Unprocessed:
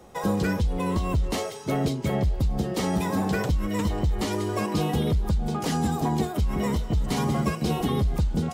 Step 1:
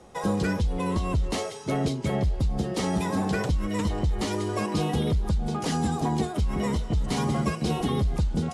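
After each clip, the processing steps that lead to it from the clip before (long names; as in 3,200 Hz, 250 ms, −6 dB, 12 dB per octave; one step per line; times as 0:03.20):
Chebyshev low-pass filter 11,000 Hz, order 4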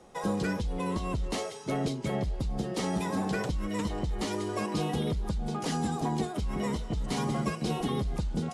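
parametric band 80 Hz −8 dB 0.88 octaves
level −3.5 dB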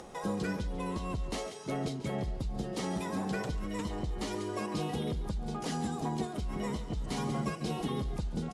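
upward compression, threshold −35 dBFS
slap from a distant wall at 24 metres, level −13 dB
level −4 dB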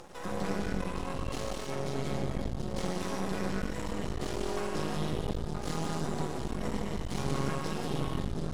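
reverb whose tail is shaped and stops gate 330 ms flat, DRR −3 dB
half-wave rectification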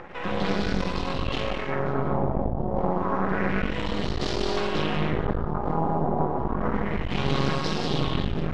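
auto-filter low-pass sine 0.29 Hz 780–4,500 Hz
highs frequency-modulated by the lows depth 0.25 ms
level +7 dB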